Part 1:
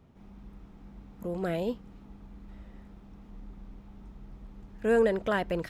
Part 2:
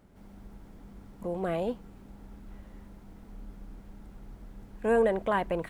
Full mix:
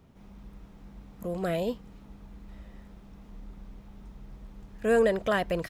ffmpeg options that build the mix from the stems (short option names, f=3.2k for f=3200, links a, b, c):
-filter_complex "[0:a]highshelf=f=3.8k:g=6,volume=1dB[a];[1:a]adelay=1.8,volume=-11dB[b];[a][b]amix=inputs=2:normalize=0"